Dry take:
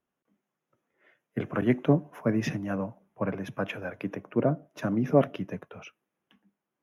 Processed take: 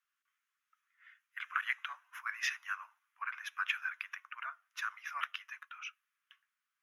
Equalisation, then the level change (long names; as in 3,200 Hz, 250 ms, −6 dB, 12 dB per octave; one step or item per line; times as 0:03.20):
Butterworth high-pass 1,200 Hz 48 dB per octave
high-shelf EQ 6,000 Hz −5 dB
+4.0 dB